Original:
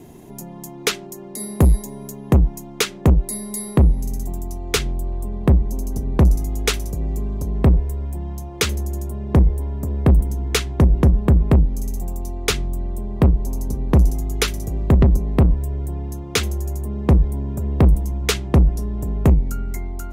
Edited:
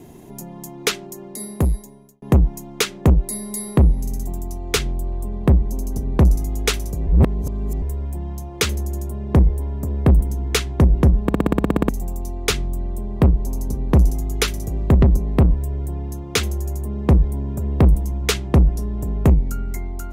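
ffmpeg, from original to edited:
-filter_complex "[0:a]asplit=15[s0][s1][s2][s3][s4][s5][s6][s7][s8][s9][s10][s11][s12][s13][s14];[s0]atrim=end=2.22,asetpts=PTS-STARTPTS,afade=t=out:st=1.23:d=0.99[s15];[s1]atrim=start=2.22:end=7.072,asetpts=PTS-STARTPTS,afade=t=in:d=0.004:c=hsin[s16];[s2]atrim=start=7.068:end=7.822,asetpts=PTS-STARTPTS,areverse[s17];[s3]atrim=start=7.818:end=11.292[s18];[s4]atrim=start=11.228:end=11.292[s19];[s5]atrim=start=11.228:end=11.292[s20];[s6]atrim=start=11.228:end=11.292[s21];[s7]atrim=start=11.228:end=11.292[s22];[s8]atrim=start=11.228:end=11.292[s23];[s9]atrim=start=11.228:end=11.292[s24];[s10]atrim=start=11.228:end=11.292[s25];[s11]atrim=start=11.228:end=11.292[s26];[s12]atrim=start=11.228:end=11.292[s27];[s13]atrim=start=11.228:end=11.292[s28];[s14]atrim=start=11.888[s29];[s15][s16]concat=n=2:v=0:a=1[s30];[s30][s17]acrossfade=d=0.004:c1=hsin:c2=hsin[s31];[s31][s18]acrossfade=d=0.004:c1=hsin:c2=hsin[s32];[s32][s19]acrossfade=d=0.004:c1=hsin:c2=hsin[s33];[s33][s20]acrossfade=d=0.004:c1=hsin:c2=hsin[s34];[s34][s21]acrossfade=d=0.004:c1=hsin:c2=hsin[s35];[s35][s22]acrossfade=d=0.004:c1=hsin:c2=hsin[s36];[s36][s23]acrossfade=d=0.004:c1=hsin:c2=hsin[s37];[s37][s24]acrossfade=d=0.004:c1=hsin:c2=hsin[s38];[s38][s25]acrossfade=d=0.004:c1=hsin:c2=hsin[s39];[s39][s26]acrossfade=d=0.004:c1=hsin:c2=hsin[s40];[s40][s27]acrossfade=d=0.004:c1=hsin:c2=hsin[s41];[s41][s28]acrossfade=d=0.004:c1=hsin:c2=hsin[s42];[s42][s29]acrossfade=d=0.004:c1=hsin:c2=hsin"

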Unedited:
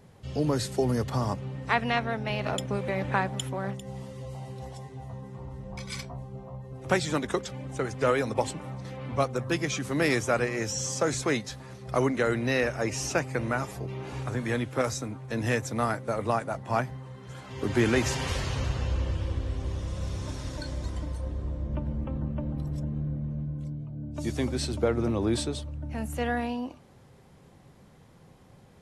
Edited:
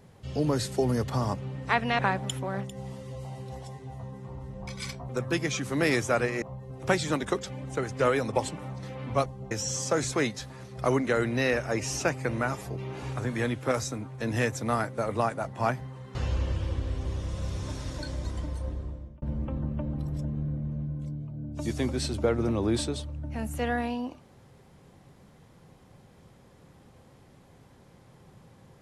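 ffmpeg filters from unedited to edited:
-filter_complex "[0:a]asplit=8[s0][s1][s2][s3][s4][s5][s6][s7];[s0]atrim=end=1.992[s8];[s1]atrim=start=3.088:end=6.192[s9];[s2]atrim=start=9.278:end=10.612[s10];[s3]atrim=start=6.438:end=9.282[s11];[s4]atrim=start=6.188:end=6.442[s12];[s5]atrim=start=10.608:end=17.252[s13];[s6]atrim=start=18.738:end=21.81,asetpts=PTS-STARTPTS,afade=t=out:st=2.542:d=0.53[s14];[s7]atrim=start=21.81,asetpts=PTS-STARTPTS,afade=t=in:d=0.004:c=hsin[s15];[s8][s9]acrossfade=d=0.004:c1=hsin:c2=hsin[s16];[s16][s10]acrossfade=d=0.004:c1=hsin:c2=hsin[s17];[s17][s11]acrossfade=d=0.004:c1=hsin:c2=hsin[s18];[s18][s12]acrossfade=d=0.004:c1=hsin:c2=hsin[s19];[s19][s13]acrossfade=d=0.004:c1=hsin:c2=hsin[s20];[s14][s15]concat=n=2:v=0:a=1[s21];[s20][s21]acrossfade=d=0.004:c1=hsin:c2=hsin"

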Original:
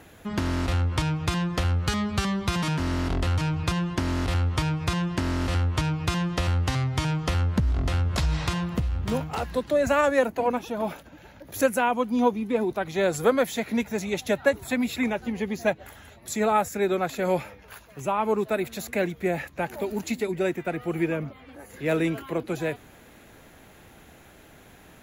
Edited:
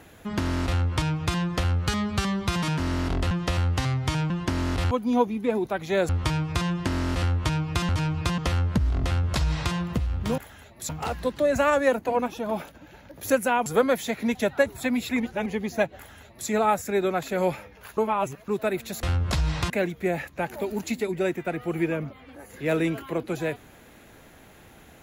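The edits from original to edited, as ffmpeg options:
-filter_complex "[0:a]asplit=17[s0][s1][s2][s3][s4][s5][s6][s7][s8][s9][s10][s11][s12][s13][s14][s15][s16];[s0]atrim=end=3.312[s17];[s1]atrim=start=6.208:end=7.202[s18];[s2]atrim=start=3.798:end=4.412[s19];[s3]atrim=start=11.968:end=13.152[s20];[s4]atrim=start=4.408:end=6.212[s21];[s5]atrim=start=3.308:end=3.802[s22];[s6]atrim=start=7.198:end=9.202[s23];[s7]atrim=start=15.838:end=16.352[s24];[s8]atrim=start=9.198:end=11.972[s25];[s9]atrim=start=13.148:end=13.842[s26];[s10]atrim=start=14.218:end=15.072[s27];[s11]atrim=start=15.068:end=15.332,asetpts=PTS-STARTPTS,areverse[s28];[s12]atrim=start=15.328:end=17.842[s29];[s13]atrim=start=17.838:end=18.352,asetpts=PTS-STARTPTS,areverse[s30];[s14]atrim=start=18.348:end=18.902[s31];[s15]atrim=start=7.878:end=8.552[s32];[s16]atrim=start=18.898[s33];[s17][s18]acrossfade=d=0.004:c1=hsin:c2=hsin[s34];[s34][s19]acrossfade=d=0.004:c1=hsin:c2=hsin[s35];[s35][s20]acrossfade=d=0.004:c1=hsin:c2=hsin[s36];[s36][s21]acrossfade=d=0.004:c1=hsin:c2=hsin[s37];[s37][s22]acrossfade=d=0.004:c1=hsin:c2=hsin[s38];[s38][s23]acrossfade=d=0.004:c1=hsin:c2=hsin[s39];[s39][s24]acrossfade=d=0.004:c1=hsin:c2=hsin[s40];[s40][s25]acrossfade=d=0.004:c1=hsin:c2=hsin[s41];[s41][s26]acrossfade=d=0.004:c1=hsin:c2=hsin[s42];[s42][s27]acrossfade=d=0.004:c1=hsin:c2=hsin[s43];[s43][s28]acrossfade=d=0.004:c1=hsin:c2=hsin[s44];[s44][s29]acrossfade=d=0.004:c1=hsin:c2=hsin[s45];[s45][s30]acrossfade=d=0.004:c1=hsin:c2=hsin[s46];[s46][s31]acrossfade=d=0.004:c1=hsin:c2=hsin[s47];[s47][s32]acrossfade=d=0.004:c1=hsin:c2=hsin[s48];[s48][s33]acrossfade=d=0.004:c1=hsin:c2=hsin"

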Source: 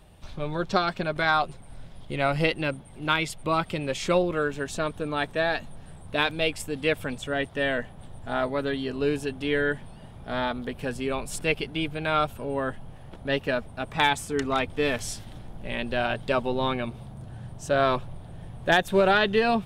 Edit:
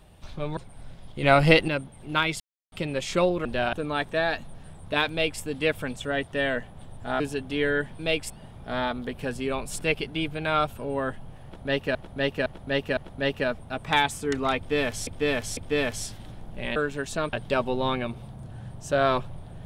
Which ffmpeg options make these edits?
-filter_complex "[0:a]asplit=18[s0][s1][s2][s3][s4][s5][s6][s7][s8][s9][s10][s11][s12][s13][s14][s15][s16][s17];[s0]atrim=end=0.572[s18];[s1]atrim=start=1.498:end=2.162[s19];[s2]atrim=start=2.158:end=2.612,asetpts=PTS-STARTPTS,volume=2.11[s20];[s3]atrim=start=2.608:end=3.33,asetpts=PTS-STARTPTS,afade=t=out:st=0.718:d=0.004:c=hsin[s21];[s4]atrim=start=3.33:end=3.65,asetpts=PTS-STARTPTS,volume=0[s22];[s5]atrim=start=3.65:end=4.382,asetpts=PTS-STARTPTS,afade=t=in:d=0.004:c=hsin[s23];[s6]atrim=start=15.828:end=16.112[s24];[s7]atrim=start=4.948:end=8.422[s25];[s8]atrim=start=9.108:end=9.902[s26];[s9]atrim=start=6.318:end=6.632[s27];[s10]atrim=start=9.898:end=13.552[s28];[s11]atrim=start=13.038:end=13.552[s29];[s12]atrim=start=13.038:end=13.552[s30];[s13]atrim=start=13.038:end=15.142[s31];[s14]atrim=start=14.638:end=15.142[s32];[s15]atrim=start=14.638:end=15.832[s33];[s16]atrim=start=4.378:end=4.952[s34];[s17]atrim=start=16.108[s35];[s18][s19]acrossfade=d=0.004:c1=hsin:c2=hsin[s36];[s36][s20]acrossfade=d=0.004:c1=hsin:c2=hsin[s37];[s21][s22][s23]concat=n=3:v=0:a=1[s38];[s37][s38]acrossfade=d=0.004:c1=hsin:c2=hsin[s39];[s39][s24]acrossfade=d=0.004:c1=hsin:c2=hsin[s40];[s40][s25]acrossfade=d=0.004:c1=hsin:c2=hsin[s41];[s41][s26]acrossfade=d=0.004:c1=hsin:c2=hsin[s42];[s42][s27]acrossfade=d=0.004:c1=hsin:c2=hsin[s43];[s43][s28]acrossfade=d=0.004:c1=hsin:c2=hsin[s44];[s44][s29]acrossfade=d=0.004:c1=hsin:c2=hsin[s45];[s45][s30]acrossfade=d=0.004:c1=hsin:c2=hsin[s46];[s46][s31]acrossfade=d=0.004:c1=hsin:c2=hsin[s47];[s47][s32]acrossfade=d=0.004:c1=hsin:c2=hsin[s48];[s48][s33]acrossfade=d=0.004:c1=hsin:c2=hsin[s49];[s49][s34]acrossfade=d=0.004:c1=hsin:c2=hsin[s50];[s50][s35]acrossfade=d=0.004:c1=hsin:c2=hsin"

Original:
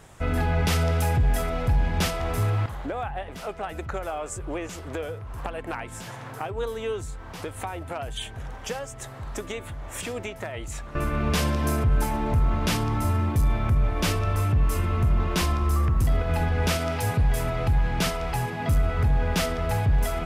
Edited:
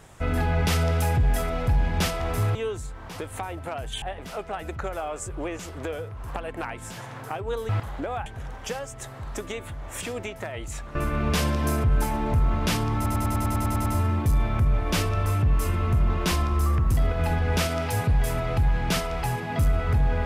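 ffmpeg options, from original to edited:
-filter_complex "[0:a]asplit=14[s0][s1][s2][s3][s4][s5][s6][s7][s8][s9][s10][s11][s12][s13];[s0]atrim=end=2.552[s14];[s1]atrim=start=6.788:end=8.262[s15];[s2]atrim=start=3.118:end=6.792[s16];[s3]atrim=start=2.548:end=3.122[s17];[s4]atrim=start=8.258:end=13.062[s18];[s5]atrim=start=12.958:end=13.062[s19];[s6]atrim=start=12.958:end=13.062[s20];[s7]atrim=start=12.958:end=13.062[s21];[s8]atrim=start=12.958:end=13.062[s22];[s9]atrim=start=12.958:end=13.062[s23];[s10]atrim=start=12.958:end=13.062[s24];[s11]atrim=start=12.958:end=13.062[s25];[s12]atrim=start=12.958:end=13.062[s26];[s13]atrim=start=12.958[s27];[s14][s15]acrossfade=d=0.004:c1=hsin:c2=hsin[s28];[s28][s16]acrossfade=d=0.004:c1=hsin:c2=hsin[s29];[s29][s17]acrossfade=d=0.004:c1=hsin:c2=hsin[s30];[s30][s18]acrossfade=d=0.004:c1=hsin:c2=hsin[s31];[s31][s19]acrossfade=d=0.004:c1=hsin:c2=hsin[s32];[s32][s20]acrossfade=d=0.004:c1=hsin:c2=hsin[s33];[s33][s21]acrossfade=d=0.004:c1=hsin:c2=hsin[s34];[s34][s22]acrossfade=d=0.004:c1=hsin:c2=hsin[s35];[s35][s23]acrossfade=d=0.004:c1=hsin:c2=hsin[s36];[s36][s24]acrossfade=d=0.004:c1=hsin:c2=hsin[s37];[s37][s25]acrossfade=d=0.004:c1=hsin:c2=hsin[s38];[s38][s26]acrossfade=d=0.004:c1=hsin:c2=hsin[s39];[s39][s27]acrossfade=d=0.004:c1=hsin:c2=hsin"

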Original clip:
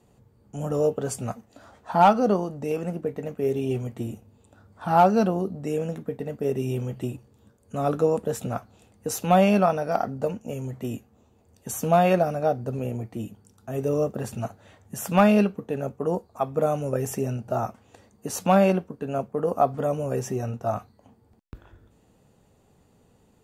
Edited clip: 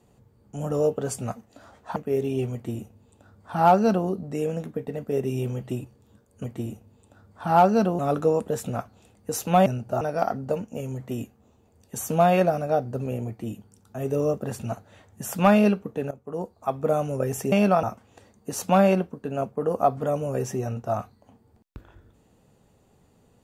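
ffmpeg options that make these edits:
-filter_complex "[0:a]asplit=9[s0][s1][s2][s3][s4][s5][s6][s7][s8];[s0]atrim=end=1.962[s9];[s1]atrim=start=3.278:end=7.762[s10];[s2]atrim=start=3.848:end=5.402[s11];[s3]atrim=start=7.758:end=9.432[s12];[s4]atrim=start=17.248:end=17.602[s13];[s5]atrim=start=9.738:end=15.84,asetpts=PTS-STARTPTS,afade=t=out:st=6.098:d=0.004:c=hsin:silence=0.149624[s14];[s6]atrim=start=15.84:end=17.252,asetpts=PTS-STARTPTS,afade=t=in:d=0.6:silence=0.149624[s15];[s7]atrim=start=9.428:end=9.742[s16];[s8]atrim=start=17.598[s17];[s9][s10]acrossfade=d=0.004:c1=hsin:c2=hsin[s18];[s18][s11]acrossfade=d=0.004:c1=hsin:c2=hsin[s19];[s19][s12]acrossfade=d=0.004:c1=hsin:c2=hsin[s20];[s20][s13]acrossfade=d=0.004:c1=hsin:c2=hsin[s21];[s14][s15]concat=n=2:v=0:a=1[s22];[s21][s22]acrossfade=d=0.004:c1=hsin:c2=hsin[s23];[s23][s16]acrossfade=d=0.004:c1=hsin:c2=hsin[s24];[s24][s17]acrossfade=d=0.004:c1=hsin:c2=hsin"

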